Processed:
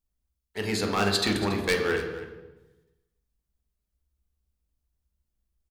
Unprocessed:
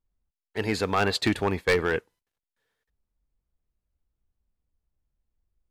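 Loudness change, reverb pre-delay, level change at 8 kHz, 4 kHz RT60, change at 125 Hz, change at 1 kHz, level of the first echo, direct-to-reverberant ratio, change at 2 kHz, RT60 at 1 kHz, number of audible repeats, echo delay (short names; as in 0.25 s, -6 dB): -0.5 dB, 3 ms, +4.5 dB, 0.85 s, -1.0 dB, -2.0 dB, -16.0 dB, 1.5 dB, -1.0 dB, 1.0 s, 1, 0.28 s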